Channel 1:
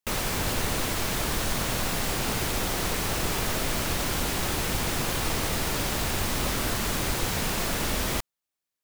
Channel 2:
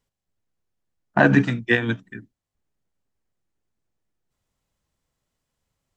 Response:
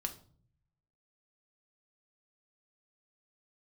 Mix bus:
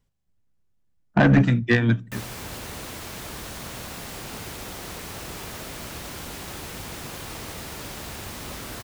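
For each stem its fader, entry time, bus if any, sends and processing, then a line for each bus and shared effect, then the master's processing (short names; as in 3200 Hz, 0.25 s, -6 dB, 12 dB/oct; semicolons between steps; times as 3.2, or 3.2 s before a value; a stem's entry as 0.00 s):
-8.0 dB, 2.05 s, no send, HPF 44 Hz
-1.0 dB, 0.00 s, send -16.5 dB, tone controls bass +9 dB, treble -1 dB; soft clip -9.5 dBFS, distortion -11 dB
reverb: on, RT60 0.50 s, pre-delay 4 ms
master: dry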